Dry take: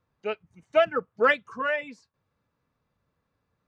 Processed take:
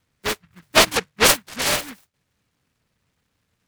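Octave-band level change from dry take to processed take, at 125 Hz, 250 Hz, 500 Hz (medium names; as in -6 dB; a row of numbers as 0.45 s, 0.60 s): no reading, +9.0 dB, +0.5 dB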